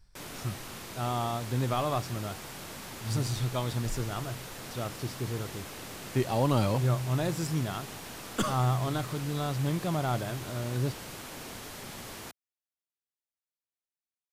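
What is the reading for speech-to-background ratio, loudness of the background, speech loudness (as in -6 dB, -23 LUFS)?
9.5 dB, -41.5 LUFS, -32.0 LUFS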